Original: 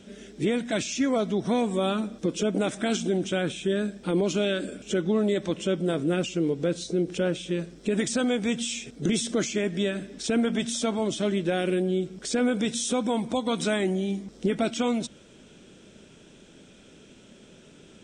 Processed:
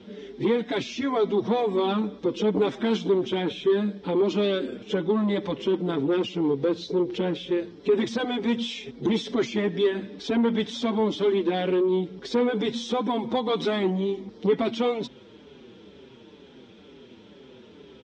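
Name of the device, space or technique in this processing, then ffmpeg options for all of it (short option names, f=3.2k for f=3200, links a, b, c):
barber-pole flanger into a guitar amplifier: -filter_complex "[0:a]asplit=2[a][b];[b]adelay=5.9,afreqshift=-2.1[c];[a][c]amix=inputs=2:normalize=1,asoftclip=type=tanh:threshold=-23dB,highpass=78,equalizer=f=160:t=q:w=4:g=-8,equalizer=f=430:t=q:w=4:g=5,equalizer=f=630:t=q:w=4:g=-6,equalizer=f=940:t=q:w=4:g=6,equalizer=f=1.5k:t=q:w=4:g=-5,equalizer=f=2.6k:t=q:w=4:g=-5,lowpass=f=4.2k:w=0.5412,lowpass=f=4.2k:w=1.3066,volume=6.5dB"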